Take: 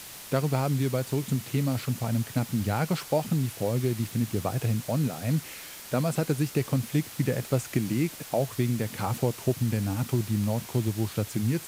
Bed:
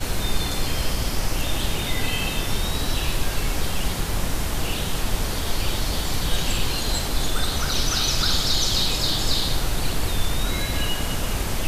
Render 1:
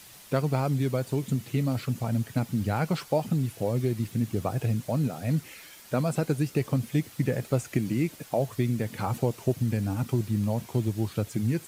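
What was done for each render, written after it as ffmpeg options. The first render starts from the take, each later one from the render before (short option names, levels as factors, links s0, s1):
-af "afftdn=nr=8:nf=-43"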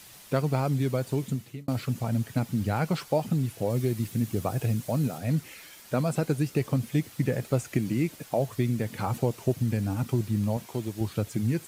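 -filter_complex "[0:a]asettb=1/sr,asplit=3[s0][s1][s2];[s0]atrim=end=3.704[s3];[s1]atrim=start=3.7:end=5.18,asetpts=PTS-STARTPTS,afade=t=in:d=0.004:c=qsin,afade=t=out:st=1.476:d=0.004:c=qsin,highshelf=f=6500:g=5.5[s4];[s2]atrim=start=5.176[s5];[s3][s4]acrossfade=d=0.004:c1=hsin:c2=qsin[s6];[s6][s5]acrossfade=d=0.004:c1=qsin:c2=hsin,asettb=1/sr,asplit=3[s7][s8][s9];[s7]atrim=end=10.574[s10];[s8]atrim=start=10.57:end=11.01,asetpts=PTS-STARTPTS,afade=t=in:d=0.004:c=qsin,afade=t=out:st=0.436:d=0.004:c=qsin,lowshelf=f=180:g=-11[s11];[s9]atrim=start=11.006[s12];[s10][s11]acrossfade=d=0.004:c1=hsin:c2=qsin[s13];[s13][s12]acrossfade=d=0.004:c1=qsin:c2=hsin,asplit=2[s14][s15];[s14]atrim=end=1.68,asetpts=PTS-STARTPTS,afade=t=out:st=1.22:d=0.46[s16];[s15]atrim=start=1.68,asetpts=PTS-STARTPTS,afade=t=in:d=0.004:c=hsin[s17];[s16][s17]concat=n=2:v=0:a=1"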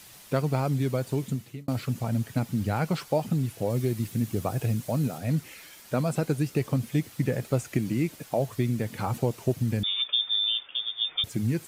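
-filter_complex "[0:a]asettb=1/sr,asplit=3[s0][s1][s2];[s0]atrim=end=9.834[s3];[s1]atrim=start=9.83:end=11.24,asetpts=PTS-STARTPTS,afade=t=in:d=0.004:c=qsin,afade=t=out:st=1.406:d=0.004:c=qsin,lowpass=f=3100:t=q:w=0.5098,lowpass=f=3100:t=q:w=0.6013,lowpass=f=3100:t=q:w=0.9,lowpass=f=3100:t=q:w=2.563,afreqshift=-3700[s4];[s2]atrim=start=11.236[s5];[s3][s4]acrossfade=d=0.004:c1=hsin:c2=qsin[s6];[s6][s5]acrossfade=d=0.004:c1=qsin:c2=hsin"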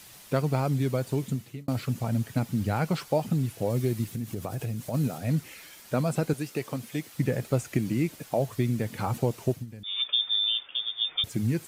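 -filter_complex "[0:a]asplit=3[s0][s1][s2];[s0]afade=t=out:st=4.04:d=0.02[s3];[s1]acompressor=threshold=0.0355:ratio=4:attack=3.2:release=140:knee=1:detection=peak,afade=t=in:st=4.04:d=0.02,afade=t=out:st=4.93:d=0.02[s4];[s2]afade=t=in:st=4.93:d=0.02[s5];[s3][s4][s5]amix=inputs=3:normalize=0,asettb=1/sr,asplit=3[s6][s7][s8];[s6]atrim=end=6.334[s9];[s7]atrim=start=6.33:end=7.15,asetpts=PTS-STARTPTS,afade=t=in:d=0.004:c=qsin,afade=t=out:st=0.816:d=0.004:c=qsin,highpass=f=400:p=1[s10];[s8]atrim=start=7.146[s11];[s9][s10]acrossfade=d=0.004:c1=hsin:c2=qsin[s12];[s12][s11]acrossfade=d=0.004:c1=qsin:c2=hsin,asplit=3[s13][s14][s15];[s13]atrim=end=9.66,asetpts=PTS-STARTPTS,afade=t=out:st=9.42:d=0.24:c=qsin:silence=0.158489[s16];[s14]atrim=start=9.66:end=9.83,asetpts=PTS-STARTPTS,volume=0.158[s17];[s15]atrim=start=9.83,asetpts=PTS-STARTPTS,afade=t=in:d=0.24:c=qsin:silence=0.158489[s18];[s16][s17][s18]concat=n=3:v=0:a=1"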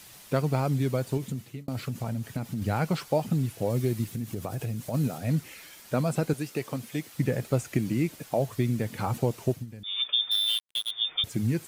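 -filter_complex "[0:a]asettb=1/sr,asplit=3[s0][s1][s2];[s0]atrim=end=1.174[s3];[s1]atrim=start=1.17:end=2.62,asetpts=PTS-STARTPTS,afade=t=in:d=0.004:c=qsin,afade=t=out:st=1.446:d=0.004:c=qsin,acompressor=threshold=0.0447:ratio=6:attack=3.2:release=140:knee=1:detection=peak[s4];[s2]atrim=start=2.616[s5];[s3][s4]acrossfade=d=0.004:c1=hsin:c2=qsin[s6];[s6][s5]acrossfade=d=0.004:c1=qsin:c2=hsin,asettb=1/sr,asplit=3[s7][s8][s9];[s7]atrim=end=10.314[s10];[s8]atrim=start=10.31:end=10.91,asetpts=PTS-STARTPTS,afade=t=in:d=0.004:c=qsin,afade=t=out:st=0.596:d=0.004:c=qsin,acrusher=bits=4:mix=0:aa=0.5[s11];[s9]atrim=start=10.906[s12];[s10][s11]acrossfade=d=0.004:c1=hsin:c2=qsin[s13];[s13][s12]acrossfade=d=0.004:c1=qsin:c2=hsin"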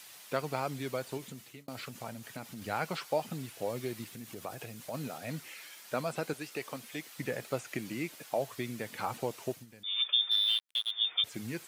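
-filter_complex "[0:a]highpass=f=850:p=1,acrossover=split=4700[s0][s1];[s1]acompressor=threshold=0.00355:ratio=4:attack=1:release=60[s2];[s0][s2]amix=inputs=2:normalize=0"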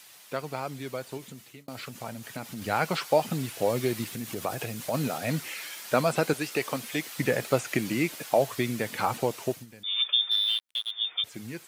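-af "dynaudnorm=f=390:g=13:m=3.16"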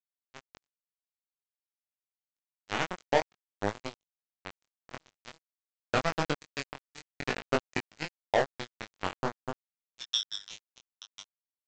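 -af "aresample=16000,acrusher=bits=2:mix=0:aa=0.5,aresample=44100,flanger=delay=19:depth=3.4:speed=0.51"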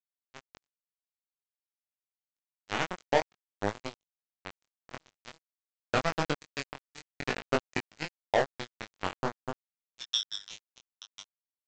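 -af anull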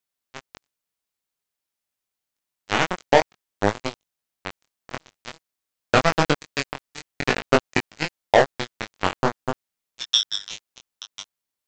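-af "volume=3.35,alimiter=limit=0.794:level=0:latency=1"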